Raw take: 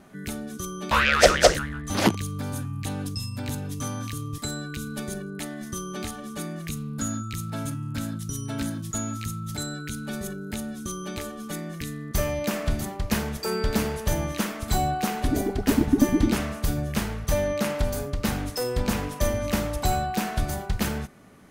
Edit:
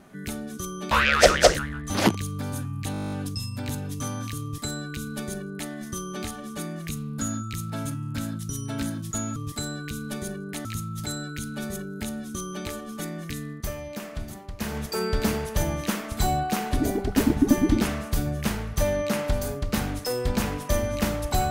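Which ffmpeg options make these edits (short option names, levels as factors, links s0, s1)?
-filter_complex "[0:a]asplit=15[s0][s1][s2][s3][s4][s5][s6][s7][s8][s9][s10][s11][s12][s13][s14];[s0]atrim=end=2.942[s15];[s1]atrim=start=2.918:end=2.942[s16];[s2]atrim=start=2.918:end=2.942[s17];[s3]atrim=start=2.918:end=2.942[s18];[s4]atrim=start=2.918:end=2.942[s19];[s5]atrim=start=2.918:end=2.942[s20];[s6]atrim=start=2.918:end=2.942[s21];[s7]atrim=start=2.918:end=2.942[s22];[s8]atrim=start=2.918:end=2.942[s23];[s9]atrim=start=2.918:end=2.942[s24];[s10]atrim=start=2.918:end=9.162[s25];[s11]atrim=start=4.218:end=5.512[s26];[s12]atrim=start=9.158:end=12.27,asetpts=PTS-STARTPTS,afade=t=out:st=2.862:d=0.25:c=qua:silence=0.375837[s27];[s13]atrim=start=12.27:end=13.04,asetpts=PTS-STARTPTS,volume=0.376[s28];[s14]atrim=start=13.04,asetpts=PTS-STARTPTS,afade=t=in:d=0.25:c=qua:silence=0.375837[s29];[s15][s16]acrossfade=d=0.004:c1=hsin:c2=hsin[s30];[s30][s17]acrossfade=d=0.004:c1=hsin:c2=hsin[s31];[s31][s18]acrossfade=d=0.004:c1=hsin:c2=hsin[s32];[s32][s19]acrossfade=d=0.004:c1=hsin:c2=hsin[s33];[s33][s20]acrossfade=d=0.004:c1=hsin:c2=hsin[s34];[s34][s21]acrossfade=d=0.004:c1=hsin:c2=hsin[s35];[s35][s22]acrossfade=d=0.004:c1=hsin:c2=hsin[s36];[s36][s23]acrossfade=d=0.004:c1=hsin:c2=hsin[s37];[s37][s24]acrossfade=d=0.004:c1=hsin:c2=hsin[s38];[s38][s25]acrossfade=d=0.004:c1=hsin:c2=hsin[s39];[s39][s26]acrossfade=d=0.004:c1=hsin:c2=hsin[s40];[s27][s28][s29]concat=n=3:v=0:a=1[s41];[s40][s41]acrossfade=d=0.004:c1=hsin:c2=hsin"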